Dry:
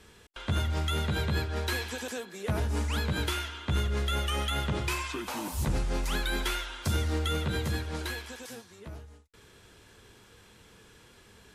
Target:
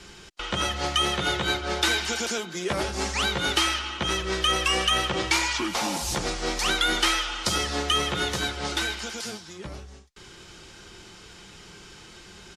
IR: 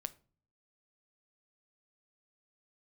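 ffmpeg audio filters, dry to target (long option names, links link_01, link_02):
-filter_complex "[0:a]highshelf=frequency=2900:gain=-10,aecho=1:1:5.2:0.33,asetrate=40517,aresample=44100,equalizer=frequency=5400:width=0.61:gain=14.5,acrossover=split=300|6200[link_01][link_02][link_03];[link_01]acompressor=threshold=-44dB:ratio=4[link_04];[link_04][link_02][link_03]amix=inputs=3:normalize=0,volume=7.5dB"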